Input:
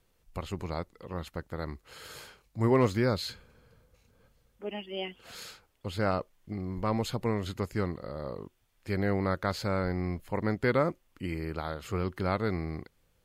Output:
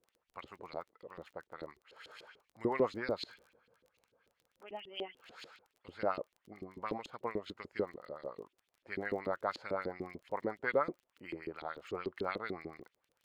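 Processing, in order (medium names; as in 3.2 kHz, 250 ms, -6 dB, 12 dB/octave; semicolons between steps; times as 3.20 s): 0.58–1.99 s: partial rectifier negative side -3 dB; LFO band-pass saw up 6.8 Hz 310–3800 Hz; crackle 20 per s -52 dBFS; 6.93–7.89 s: transient shaper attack +2 dB, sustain -4 dB; trim +1 dB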